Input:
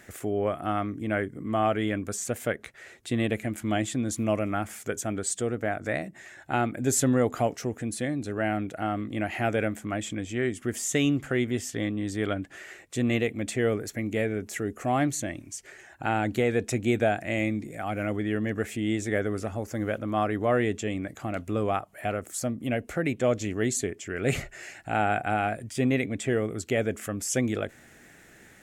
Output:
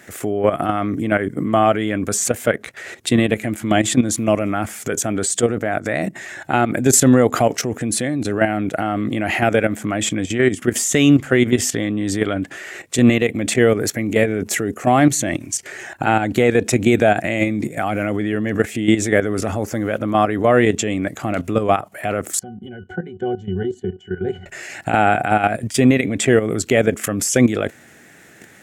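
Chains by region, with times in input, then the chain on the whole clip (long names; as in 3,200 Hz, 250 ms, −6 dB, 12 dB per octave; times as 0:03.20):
0:22.39–0:24.46: resonances in every octave F#, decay 0.16 s + one half of a high-frequency compander encoder only
whole clip: output level in coarse steps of 13 dB; high-pass filter 100 Hz; boost into a limiter +20.5 dB; level −2 dB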